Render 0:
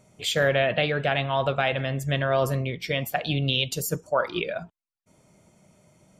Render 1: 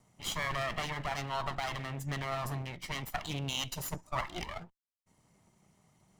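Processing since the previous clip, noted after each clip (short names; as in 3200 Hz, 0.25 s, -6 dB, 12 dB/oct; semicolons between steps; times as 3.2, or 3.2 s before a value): minimum comb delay 1 ms; gain -7.5 dB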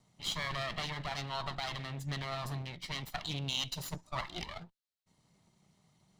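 fifteen-band EQ 160 Hz +4 dB, 4000 Hz +10 dB, 16000 Hz -5 dB; gain -4 dB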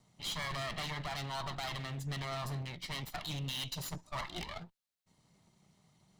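overloaded stage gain 35.5 dB; gain +1 dB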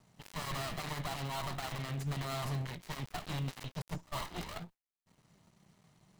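switching dead time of 0.23 ms; gain +3 dB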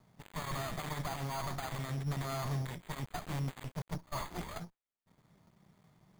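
careless resampling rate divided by 8×, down filtered, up hold; gain +1 dB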